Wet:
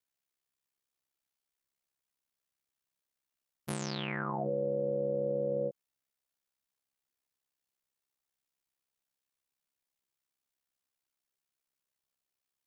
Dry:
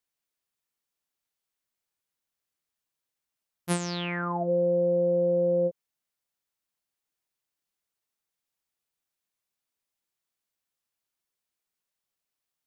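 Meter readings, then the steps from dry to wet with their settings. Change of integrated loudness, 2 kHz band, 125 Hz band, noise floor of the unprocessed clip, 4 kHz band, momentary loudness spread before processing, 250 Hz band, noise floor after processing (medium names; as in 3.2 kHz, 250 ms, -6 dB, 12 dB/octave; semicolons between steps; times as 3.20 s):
-7.5 dB, -5.0 dB, -7.0 dB, under -85 dBFS, -5.5 dB, 7 LU, -7.5 dB, under -85 dBFS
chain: ring modulator 33 Hz; peak limiter -24 dBFS, peak gain reduction 9.5 dB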